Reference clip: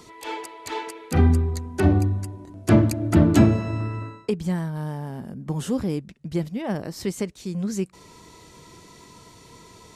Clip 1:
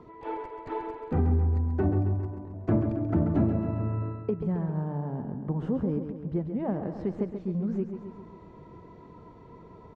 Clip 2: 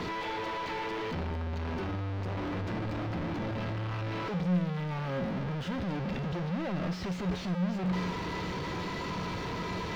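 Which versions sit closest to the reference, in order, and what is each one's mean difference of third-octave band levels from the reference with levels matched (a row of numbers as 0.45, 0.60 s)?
1, 2; 8.0, 12.5 dB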